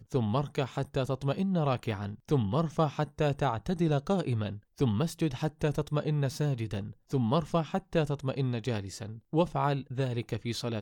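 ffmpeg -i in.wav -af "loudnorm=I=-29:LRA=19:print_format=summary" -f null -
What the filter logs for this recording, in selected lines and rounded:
Input Integrated:    -31.2 LUFS
Input True Peak:     -14.1 dBTP
Input LRA:             1.7 LU
Input Threshold:     -41.3 LUFS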